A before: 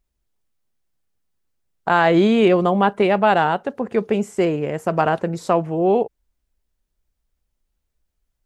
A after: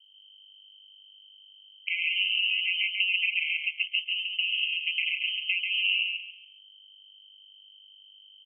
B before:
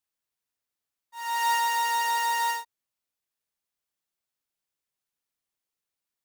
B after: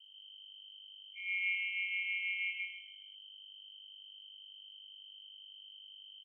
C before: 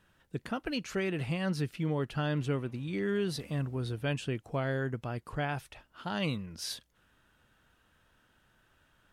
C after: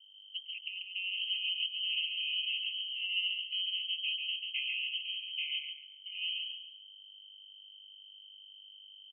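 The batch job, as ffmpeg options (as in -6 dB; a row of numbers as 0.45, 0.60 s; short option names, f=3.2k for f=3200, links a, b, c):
-af "afwtdn=0.0251,tiltshelf=f=810:g=3.5,aecho=1:1:1.9:0.64,acompressor=threshold=-19dB:ratio=6,aeval=exprs='val(0)+0.00316*(sin(2*PI*50*n/s)+sin(2*PI*2*50*n/s)/2+sin(2*PI*3*50*n/s)/3+sin(2*PI*4*50*n/s)/4+sin(2*PI*5*50*n/s)/5)':c=same,adynamicsmooth=sensitivity=5.5:basefreq=600,aeval=exprs='val(0)*sin(2*PI*94*n/s)':c=same,aecho=1:1:139|278|417|556:0.631|0.183|0.0531|0.0154,lowpass=f=2.7k:t=q:w=0.5098,lowpass=f=2.7k:t=q:w=0.6013,lowpass=f=2.7k:t=q:w=0.9,lowpass=f=2.7k:t=q:w=2.563,afreqshift=-3200,afftfilt=real='re*eq(mod(floor(b*sr/1024/2000),2),1)':imag='im*eq(mod(floor(b*sr/1024/2000),2),1)':win_size=1024:overlap=0.75,volume=-4dB"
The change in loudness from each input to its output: -7.5, -10.0, +0.5 LU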